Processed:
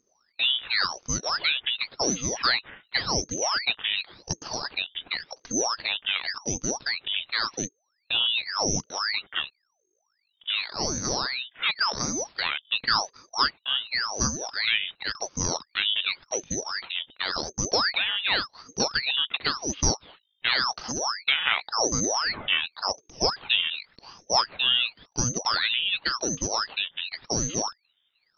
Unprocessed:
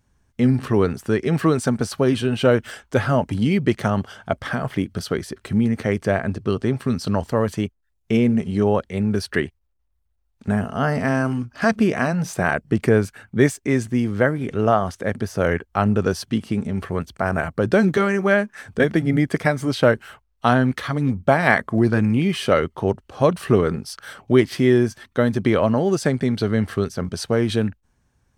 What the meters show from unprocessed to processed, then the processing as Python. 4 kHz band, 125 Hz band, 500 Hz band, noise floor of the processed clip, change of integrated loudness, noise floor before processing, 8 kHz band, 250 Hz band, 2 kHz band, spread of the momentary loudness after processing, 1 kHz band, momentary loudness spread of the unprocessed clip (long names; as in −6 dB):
+12.0 dB, −17.0 dB, −15.5 dB, −74 dBFS, −5.0 dB, −68 dBFS, +11.0 dB, −17.5 dB, −2.5 dB, 7 LU, −5.0 dB, 8 LU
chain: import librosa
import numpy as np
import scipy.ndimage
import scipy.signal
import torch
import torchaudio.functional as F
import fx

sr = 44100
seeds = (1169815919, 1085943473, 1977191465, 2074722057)

y = fx.freq_invert(x, sr, carrier_hz=3400)
y = fx.ring_lfo(y, sr, carrier_hz=1600.0, swing_pct=90, hz=0.91)
y = F.gain(torch.from_numpy(y), -5.0).numpy()